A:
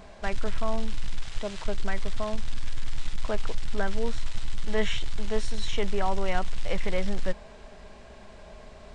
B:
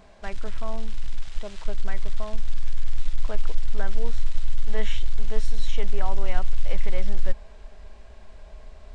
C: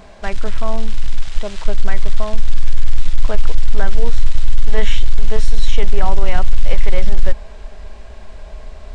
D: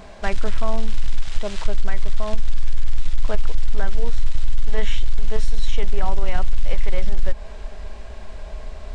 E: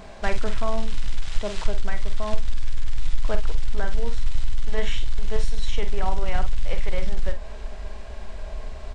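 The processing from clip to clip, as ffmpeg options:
ffmpeg -i in.wav -af "asubboost=boost=4:cutoff=74,volume=-4.5dB" out.wav
ffmpeg -i in.wav -af "apsyclip=12dB,volume=-1.5dB" out.wav
ffmpeg -i in.wav -af "acompressor=threshold=-9dB:ratio=6" out.wav
ffmpeg -i in.wav -filter_complex "[0:a]asplit=2[link_01][link_02];[link_02]adelay=48,volume=-9dB[link_03];[link_01][link_03]amix=inputs=2:normalize=0,volume=-1dB" out.wav

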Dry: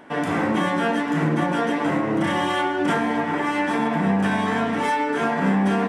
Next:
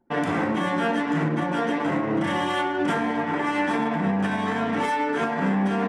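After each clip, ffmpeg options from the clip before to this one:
ffmpeg -i in.wav -af "anlmdn=10,alimiter=limit=-14.5dB:level=0:latency=1:release=314" out.wav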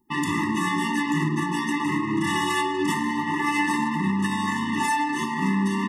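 ffmpeg -i in.wav -af "crystalizer=i=4.5:c=0,afftfilt=real='re*eq(mod(floor(b*sr/1024/430),2),0)':imag='im*eq(mod(floor(b*sr/1024/430),2),0)':win_size=1024:overlap=0.75" out.wav

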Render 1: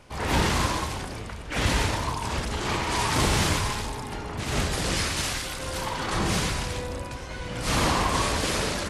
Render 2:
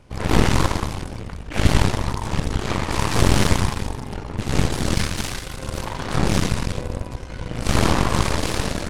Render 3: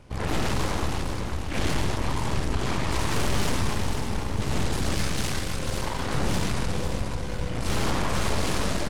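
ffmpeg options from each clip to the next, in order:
ffmpeg -i in.wav -af "lowshelf=frequency=370:gain=10,aeval=exprs='0.668*(cos(1*acos(clip(val(0)/0.668,-1,1)))-cos(1*PI/2))+0.075*(cos(3*acos(clip(val(0)/0.668,-1,1)))-cos(3*PI/2))+0.211*(cos(4*acos(clip(val(0)/0.668,-1,1)))-cos(4*PI/2))+0.0335*(cos(8*acos(clip(val(0)/0.668,-1,1)))-cos(8*PI/2))':channel_layout=same,volume=-1dB" out.wav
ffmpeg -i in.wav -af "asoftclip=type=tanh:threshold=-18.5dB,aecho=1:1:493|986|1479|1972|2465:0.447|0.201|0.0905|0.0407|0.0183" out.wav

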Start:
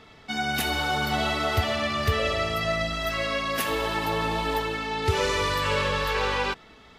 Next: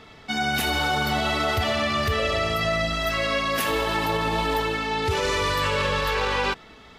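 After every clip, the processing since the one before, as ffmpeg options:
ffmpeg -i in.wav -af "alimiter=limit=-18.5dB:level=0:latency=1:release=18,volume=3.5dB" out.wav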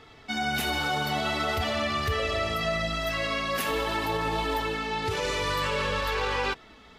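ffmpeg -i in.wav -af "flanger=delay=2.4:depth=4.1:regen=-57:speed=0.47:shape=sinusoidal" out.wav

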